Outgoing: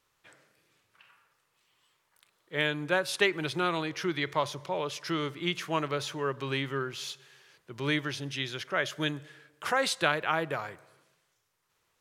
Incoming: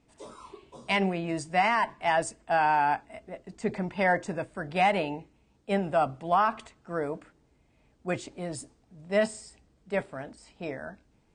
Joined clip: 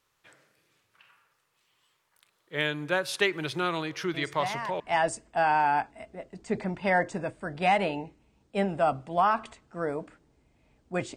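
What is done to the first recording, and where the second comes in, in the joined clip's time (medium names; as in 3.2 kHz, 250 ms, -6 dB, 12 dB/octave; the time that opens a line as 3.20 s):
outgoing
4.14 s: add incoming from 1.28 s 0.66 s -9.5 dB
4.80 s: go over to incoming from 1.94 s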